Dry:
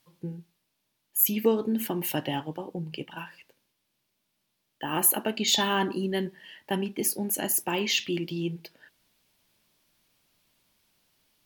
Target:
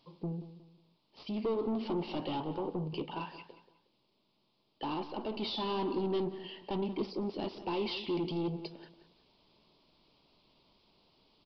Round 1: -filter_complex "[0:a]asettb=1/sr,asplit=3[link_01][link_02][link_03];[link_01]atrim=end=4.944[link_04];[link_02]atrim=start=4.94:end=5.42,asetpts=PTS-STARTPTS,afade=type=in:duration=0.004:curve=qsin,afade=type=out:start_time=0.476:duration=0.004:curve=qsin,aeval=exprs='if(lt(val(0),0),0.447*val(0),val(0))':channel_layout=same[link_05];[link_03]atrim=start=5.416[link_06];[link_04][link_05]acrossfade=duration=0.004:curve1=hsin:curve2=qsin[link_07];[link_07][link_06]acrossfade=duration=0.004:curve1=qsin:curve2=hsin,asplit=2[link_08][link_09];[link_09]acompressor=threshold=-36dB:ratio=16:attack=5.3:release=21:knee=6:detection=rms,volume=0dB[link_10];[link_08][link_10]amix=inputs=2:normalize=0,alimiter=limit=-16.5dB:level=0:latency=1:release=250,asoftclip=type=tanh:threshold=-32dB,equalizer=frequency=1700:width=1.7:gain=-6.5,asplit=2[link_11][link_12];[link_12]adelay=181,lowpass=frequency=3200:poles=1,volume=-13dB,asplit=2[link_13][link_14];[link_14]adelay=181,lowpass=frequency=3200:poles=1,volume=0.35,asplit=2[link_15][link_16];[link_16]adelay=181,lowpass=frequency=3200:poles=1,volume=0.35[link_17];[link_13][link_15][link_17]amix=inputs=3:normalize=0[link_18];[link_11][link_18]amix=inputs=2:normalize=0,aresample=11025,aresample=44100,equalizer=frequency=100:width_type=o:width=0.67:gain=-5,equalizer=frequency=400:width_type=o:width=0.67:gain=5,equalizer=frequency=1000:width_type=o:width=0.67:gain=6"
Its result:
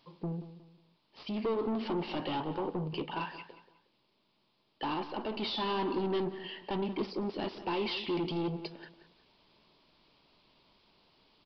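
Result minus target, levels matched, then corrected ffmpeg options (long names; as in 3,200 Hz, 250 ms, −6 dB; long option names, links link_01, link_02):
downward compressor: peak gain reduction −7 dB; 2,000 Hz band +4.5 dB
-filter_complex "[0:a]asettb=1/sr,asplit=3[link_01][link_02][link_03];[link_01]atrim=end=4.944[link_04];[link_02]atrim=start=4.94:end=5.42,asetpts=PTS-STARTPTS,afade=type=in:duration=0.004:curve=qsin,afade=type=out:start_time=0.476:duration=0.004:curve=qsin,aeval=exprs='if(lt(val(0),0),0.447*val(0),val(0))':channel_layout=same[link_05];[link_03]atrim=start=5.416[link_06];[link_04][link_05]acrossfade=duration=0.004:curve1=hsin:curve2=qsin[link_07];[link_07][link_06]acrossfade=duration=0.004:curve1=qsin:curve2=hsin,asplit=2[link_08][link_09];[link_09]acompressor=threshold=-43.5dB:ratio=16:attack=5.3:release=21:knee=6:detection=rms,volume=0dB[link_10];[link_08][link_10]amix=inputs=2:normalize=0,alimiter=limit=-16.5dB:level=0:latency=1:release=250,asoftclip=type=tanh:threshold=-32dB,equalizer=frequency=1700:width=1.7:gain=-16.5,asplit=2[link_11][link_12];[link_12]adelay=181,lowpass=frequency=3200:poles=1,volume=-13dB,asplit=2[link_13][link_14];[link_14]adelay=181,lowpass=frequency=3200:poles=1,volume=0.35,asplit=2[link_15][link_16];[link_16]adelay=181,lowpass=frequency=3200:poles=1,volume=0.35[link_17];[link_13][link_15][link_17]amix=inputs=3:normalize=0[link_18];[link_11][link_18]amix=inputs=2:normalize=0,aresample=11025,aresample=44100,equalizer=frequency=100:width_type=o:width=0.67:gain=-5,equalizer=frequency=400:width_type=o:width=0.67:gain=5,equalizer=frequency=1000:width_type=o:width=0.67:gain=6"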